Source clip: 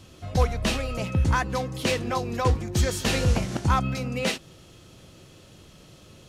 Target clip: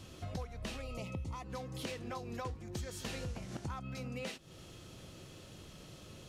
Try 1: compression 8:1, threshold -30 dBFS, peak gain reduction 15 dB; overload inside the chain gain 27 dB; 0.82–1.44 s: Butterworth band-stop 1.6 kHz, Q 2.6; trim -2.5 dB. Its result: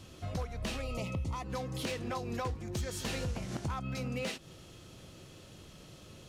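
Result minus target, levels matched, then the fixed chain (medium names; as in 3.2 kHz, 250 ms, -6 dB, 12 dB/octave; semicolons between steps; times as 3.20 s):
compression: peak gain reduction -5.5 dB
compression 8:1, threshold -36.5 dBFS, peak gain reduction 20.5 dB; overload inside the chain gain 27 dB; 0.82–1.44 s: Butterworth band-stop 1.6 kHz, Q 2.6; trim -2.5 dB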